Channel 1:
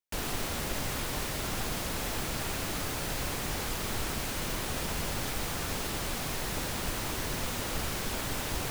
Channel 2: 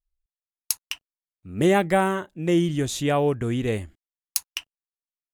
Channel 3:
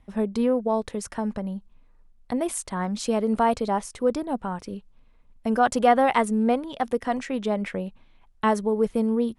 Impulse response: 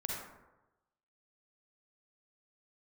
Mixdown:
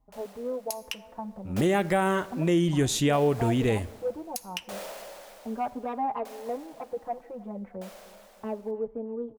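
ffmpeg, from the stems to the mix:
-filter_complex "[0:a]highpass=f=580:t=q:w=5.3,asoftclip=type=tanh:threshold=-27.5dB,aeval=exprs='val(0)*pow(10,-33*if(lt(mod(0.64*n/s,1),2*abs(0.64)/1000),1-mod(0.64*n/s,1)/(2*abs(0.64)/1000),(mod(0.64*n/s,1)-2*abs(0.64)/1000)/(1-2*abs(0.64)/1000))/20)':c=same,volume=-3.5dB,afade=t=in:st=0.92:d=0.58:silence=0.298538,afade=t=out:st=5.8:d=0.49:silence=0.334965,asplit=2[a][b];[b]volume=-11.5dB[c];[1:a]volume=2dB,asplit=3[d][e][f];[e]volume=-20.5dB[g];[2:a]lowpass=f=880:t=q:w=2.1,asoftclip=type=tanh:threshold=-7.5dB,asplit=2[h][i];[i]adelay=4.4,afreqshift=0.33[j];[h][j]amix=inputs=2:normalize=1,volume=-10dB,asplit=3[k][l][m];[l]volume=-22dB[n];[m]volume=-21dB[o];[f]apad=whole_len=384083[p];[a][p]sidechaincompress=threshold=-21dB:ratio=8:attack=16:release=350[q];[3:a]atrim=start_sample=2205[r];[c][g][n]amix=inputs=3:normalize=0[s];[s][r]afir=irnorm=-1:irlink=0[t];[o]aecho=0:1:310|620|930|1240|1550|1860|2170|2480:1|0.56|0.314|0.176|0.0983|0.0551|0.0308|0.0173[u];[q][d][k][t][u]amix=inputs=5:normalize=0,alimiter=limit=-15dB:level=0:latency=1:release=211"

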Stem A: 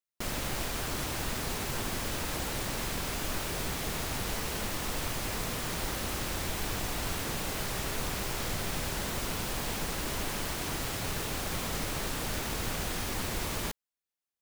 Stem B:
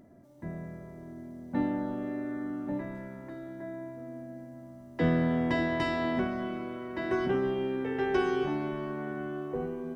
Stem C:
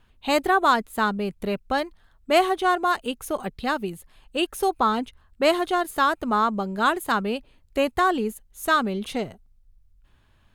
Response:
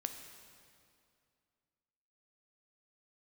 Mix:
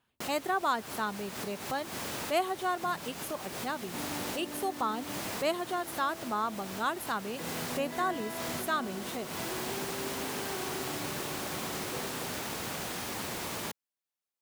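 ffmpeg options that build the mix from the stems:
-filter_complex "[0:a]volume=-2dB[a];[1:a]alimiter=level_in=1.5dB:limit=-24dB:level=0:latency=1,volume=-1.5dB,adelay=2400,volume=-8.5dB[b];[2:a]highshelf=f=8k:g=9,volume=-11.5dB,asplit=2[c][d];[d]apad=whole_len=635903[e];[a][e]sidechaincompress=threshold=-45dB:ratio=4:attack=23:release=172[f];[f][b][c]amix=inputs=3:normalize=0,highpass=140,equalizer=f=830:w=1.5:g=2"

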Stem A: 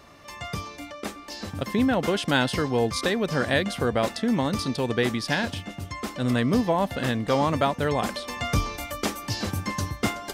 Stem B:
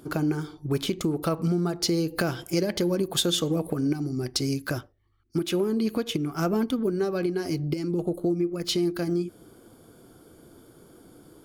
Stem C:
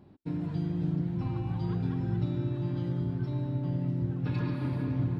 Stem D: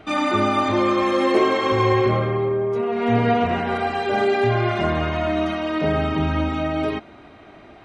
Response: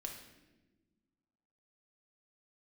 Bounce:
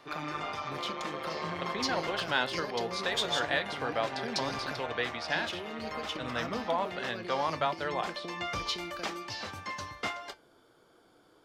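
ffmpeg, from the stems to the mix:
-filter_complex "[0:a]volume=0dB[a];[1:a]acrossover=split=250|3000[b][c][d];[c]acompressor=threshold=-33dB:ratio=6[e];[b][e][d]amix=inputs=3:normalize=0,volume=1.5dB[f];[2:a]volume=-11dB[g];[3:a]tremolo=f=150:d=0.947,volume=-7dB[h];[a][f][g][h]amix=inputs=4:normalize=0,acrossover=split=530 5600:gain=0.178 1 0.126[i][j][k];[i][j][k]amix=inputs=3:normalize=0,flanger=delay=6.6:depth=5.8:regen=-77:speed=0.2:shape=triangular"

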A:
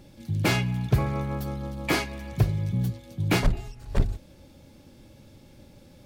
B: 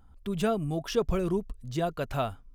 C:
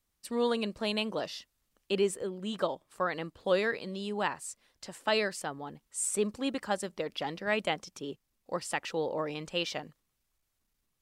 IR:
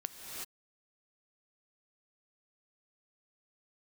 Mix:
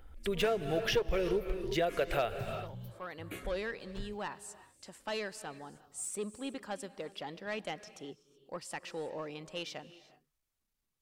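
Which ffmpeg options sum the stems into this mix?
-filter_complex "[0:a]highshelf=f=9.2k:g=10,asplit=2[a][b];[b]afreqshift=-0.61[c];[a][c]amix=inputs=2:normalize=1,volume=-19dB[d];[1:a]equalizer=f=125:t=o:w=1:g=-12,equalizer=f=250:t=o:w=1:g=-11,equalizer=f=500:t=o:w=1:g=8,equalizer=f=1k:t=o:w=1:g=-10,equalizer=f=2k:t=o:w=1:g=9,equalizer=f=8k:t=o:w=1:g=-9,aeval=exprs='clip(val(0),-1,0.0708)':c=same,volume=2.5dB,asplit=3[e][f][g];[f]volume=-7dB[h];[2:a]asoftclip=type=tanh:threshold=-23dB,volume=-8dB,asplit=2[i][j];[j]volume=-12.5dB[k];[g]apad=whole_len=485935[l];[i][l]sidechaincompress=threshold=-44dB:ratio=8:attack=16:release=818[m];[3:a]atrim=start_sample=2205[n];[h][k]amix=inputs=2:normalize=0[o];[o][n]afir=irnorm=-1:irlink=0[p];[d][e][m][p]amix=inputs=4:normalize=0,acompressor=threshold=-28dB:ratio=4"

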